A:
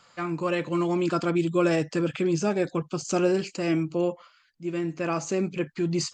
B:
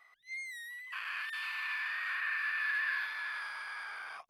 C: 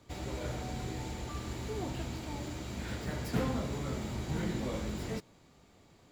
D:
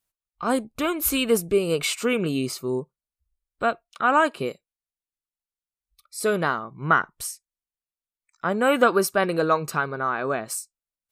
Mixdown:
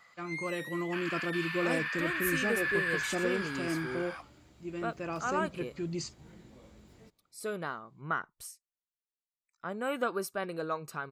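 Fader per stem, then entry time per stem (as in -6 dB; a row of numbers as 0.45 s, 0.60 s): -9.5 dB, +1.5 dB, -19.5 dB, -13.5 dB; 0.00 s, 0.00 s, 1.90 s, 1.20 s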